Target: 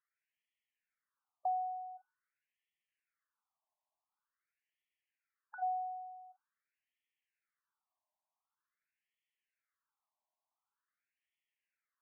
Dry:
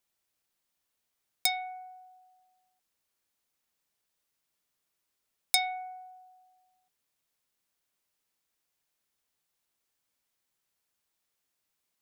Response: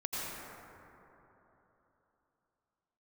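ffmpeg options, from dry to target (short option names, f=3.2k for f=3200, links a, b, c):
-af "aemphasis=mode=reproduction:type=75fm,afftfilt=real='re*between(b*sr/1024,790*pow(2500/790,0.5+0.5*sin(2*PI*0.46*pts/sr))/1.41,790*pow(2500/790,0.5+0.5*sin(2*PI*0.46*pts/sr))*1.41)':imag='im*between(b*sr/1024,790*pow(2500/790,0.5+0.5*sin(2*PI*0.46*pts/sr))/1.41,790*pow(2500/790,0.5+0.5*sin(2*PI*0.46*pts/sr))*1.41)':win_size=1024:overlap=0.75,volume=1dB"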